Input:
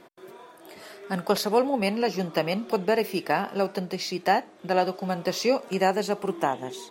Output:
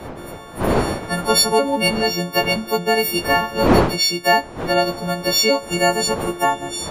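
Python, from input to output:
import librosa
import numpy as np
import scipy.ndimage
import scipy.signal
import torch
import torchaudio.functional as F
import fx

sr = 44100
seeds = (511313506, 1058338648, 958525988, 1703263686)

y = fx.freq_snap(x, sr, grid_st=4)
y = fx.dmg_wind(y, sr, seeds[0], corner_hz=630.0, level_db=-30.0)
y = y * librosa.db_to_amplitude(4.5)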